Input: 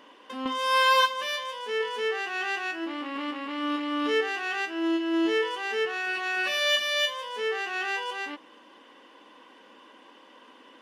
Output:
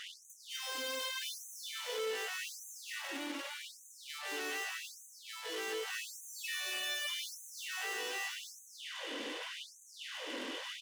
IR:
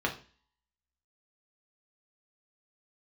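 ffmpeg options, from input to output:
-filter_complex "[0:a]asplit=2[a][b];[1:a]atrim=start_sample=2205,adelay=135[c];[b][c]afir=irnorm=-1:irlink=0,volume=-28.5dB[d];[a][d]amix=inputs=2:normalize=0,acompressor=threshold=-45dB:ratio=2.5,equalizer=f=125:t=o:w=1:g=3,equalizer=f=250:t=o:w=1:g=9,equalizer=f=500:t=o:w=1:g=8,equalizer=f=1k:t=o:w=1:g=-6,equalizer=f=2k:t=o:w=1:g=8,equalizer=f=4k:t=o:w=1:g=9,equalizer=f=8k:t=o:w=1:g=5,aeval=exprs='(tanh(282*val(0)+0.65)-tanh(0.65))/282':c=same,aecho=1:1:250|400|490|544|576.4:0.631|0.398|0.251|0.158|0.1,afftfilt=real='re*gte(b*sr/1024,200*pow(6100/200,0.5+0.5*sin(2*PI*0.84*pts/sr)))':imag='im*gte(b*sr/1024,200*pow(6100/200,0.5+0.5*sin(2*PI*0.84*pts/sr)))':win_size=1024:overlap=0.75,volume=9dB"

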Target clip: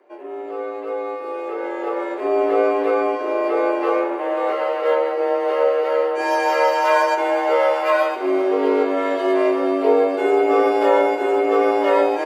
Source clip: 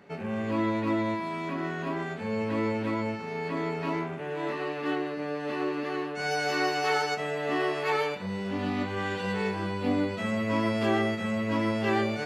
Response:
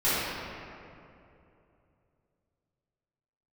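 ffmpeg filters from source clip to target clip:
-filter_complex "[0:a]equalizer=f=4.3k:w=0.35:g=-13,aecho=1:1:385|770|1155|1540|1925|2310:0.188|0.107|0.0612|0.0349|0.0199|0.0113,dynaudnorm=f=210:g=17:m=13dB,afreqshift=180,asplit=2[a][b];[1:a]atrim=start_sample=2205[c];[b][c]afir=irnorm=-1:irlink=0,volume=-28dB[d];[a][d]amix=inputs=2:normalize=0"

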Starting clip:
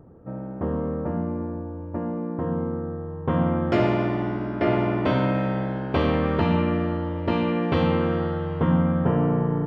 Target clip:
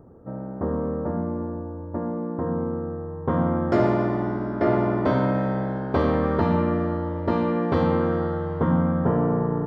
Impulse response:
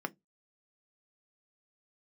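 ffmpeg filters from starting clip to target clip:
-filter_complex "[0:a]equalizer=f=2.7k:w=2.1:g=-14,asplit=2[a][b];[1:a]atrim=start_sample=2205[c];[b][c]afir=irnorm=-1:irlink=0,volume=-14.5dB[d];[a][d]amix=inputs=2:normalize=0"

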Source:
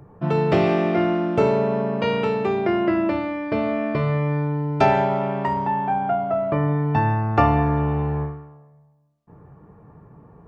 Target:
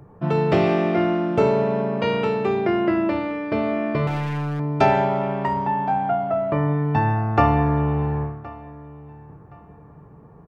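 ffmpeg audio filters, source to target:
-filter_complex "[0:a]asettb=1/sr,asplit=3[a][b][c];[a]atrim=end=4.074[d];[b]atrim=start=4.07:end=4.6,asetpts=PTS-STARTPTS,afade=t=in:d=0.004:c=qsin,afade=t=out:st=0.526:d=0.004:c=qsin,aeval=exprs='0.106*(abs(mod(val(0)/0.106+3,4)-2)-1)':c=same[e];[c]atrim=start=4.596[f];[d][e]acrossfade=d=0.004:c1=hsin:c2=qsin[g];[g][f]acrossfade=d=0.004:c1=qsin:c2=hsin,asplit=2[h][i];[i]adelay=1069,lowpass=f=3.9k:p=1,volume=-20dB,asplit=2[j][k];[k]adelay=1069,lowpass=f=3.9k:p=1,volume=0.28[l];[h][j][l]amix=inputs=3:normalize=0"

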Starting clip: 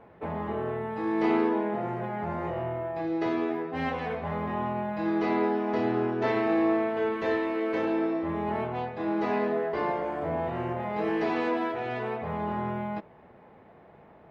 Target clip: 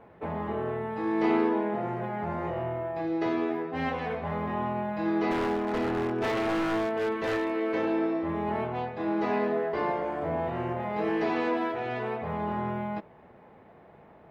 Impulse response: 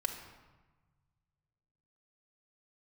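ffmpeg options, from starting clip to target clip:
-filter_complex "[0:a]asettb=1/sr,asplit=3[a][b][c];[a]atrim=end=5.314[d];[b]atrim=start=5.31:end=7.52,asetpts=PTS-STARTPTS,afade=t=in:d=0.004:c=qsin,afade=t=out:st=2.206:d=0.004:c=qsin,aeval=exprs='0.075*(abs(mod(val(0)/0.075+3,4)-2)-1)':c=same[e];[c]atrim=start=7.516[f];[d][e]acrossfade=d=0.004:c1=hsin:c2=qsin[g];[g][f]acrossfade=d=0.004:c1=qsin:c2=hsin"

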